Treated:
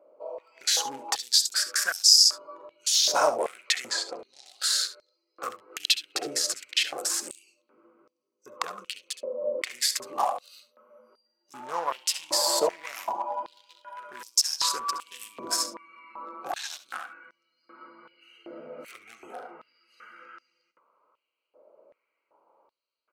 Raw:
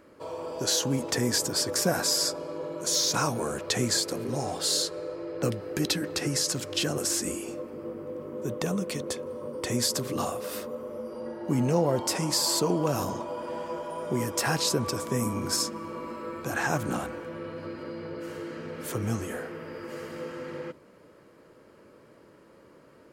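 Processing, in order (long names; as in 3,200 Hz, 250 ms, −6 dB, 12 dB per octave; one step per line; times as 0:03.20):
adaptive Wiener filter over 25 samples
noise reduction from a noise print of the clip's start 12 dB
in parallel at +1 dB: downward compressor, threshold −39 dBFS, peak gain reduction 18.5 dB
0:03.86–0:04.46: on the sum: high-frequency loss of the air 77 metres
on a send: ambience of single reflections 66 ms −15.5 dB, 76 ms −18 dB
on the sum: high-pass on a step sequencer 2.6 Hz 610–5,300 Hz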